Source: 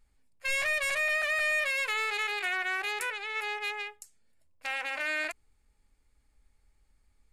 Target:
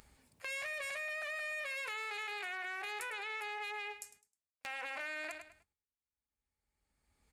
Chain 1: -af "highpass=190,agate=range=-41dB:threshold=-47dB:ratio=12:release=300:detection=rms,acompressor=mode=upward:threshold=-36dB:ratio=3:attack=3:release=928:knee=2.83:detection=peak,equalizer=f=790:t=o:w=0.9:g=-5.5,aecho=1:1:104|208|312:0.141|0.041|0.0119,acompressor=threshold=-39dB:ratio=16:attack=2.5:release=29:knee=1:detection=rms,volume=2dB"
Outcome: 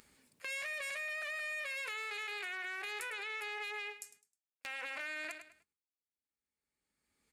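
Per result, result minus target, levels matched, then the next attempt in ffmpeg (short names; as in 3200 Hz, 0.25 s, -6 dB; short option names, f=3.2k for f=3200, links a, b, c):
125 Hz band -6.5 dB; 1000 Hz band -3.5 dB
-af "highpass=73,agate=range=-41dB:threshold=-47dB:ratio=12:release=300:detection=rms,acompressor=mode=upward:threshold=-36dB:ratio=3:attack=3:release=928:knee=2.83:detection=peak,equalizer=f=790:t=o:w=0.9:g=-5.5,aecho=1:1:104|208|312:0.141|0.041|0.0119,acompressor=threshold=-39dB:ratio=16:attack=2.5:release=29:knee=1:detection=rms,volume=2dB"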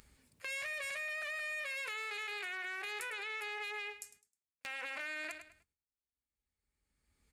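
1000 Hz band -3.5 dB
-af "highpass=73,agate=range=-41dB:threshold=-47dB:ratio=12:release=300:detection=rms,acompressor=mode=upward:threshold=-36dB:ratio=3:attack=3:release=928:knee=2.83:detection=peak,equalizer=f=790:t=o:w=0.9:g=2,aecho=1:1:104|208|312:0.141|0.041|0.0119,acompressor=threshold=-39dB:ratio=16:attack=2.5:release=29:knee=1:detection=rms,volume=2dB"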